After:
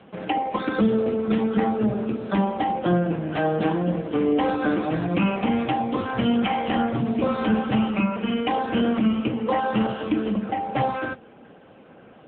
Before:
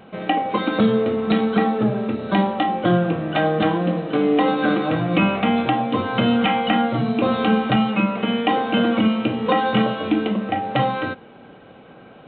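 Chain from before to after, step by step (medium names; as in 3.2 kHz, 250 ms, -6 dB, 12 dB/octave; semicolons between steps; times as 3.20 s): in parallel at -10 dB: saturation -18 dBFS, distortion -11 dB; 9.30–9.89 s: on the sum: distance through air 130 m; trim -4 dB; AMR-NB 6.7 kbps 8 kHz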